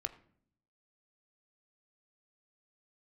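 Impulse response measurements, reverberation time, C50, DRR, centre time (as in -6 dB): 0.60 s, 15.5 dB, 7.0 dB, 6 ms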